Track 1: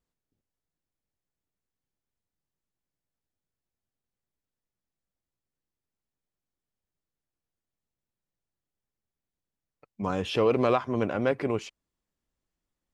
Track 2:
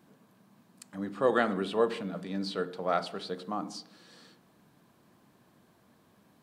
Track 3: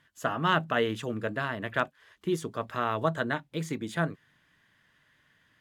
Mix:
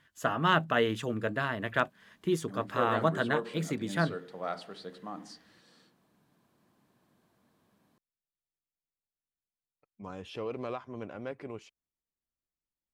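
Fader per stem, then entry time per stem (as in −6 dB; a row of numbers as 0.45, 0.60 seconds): −13.5, −7.0, 0.0 decibels; 0.00, 1.55, 0.00 seconds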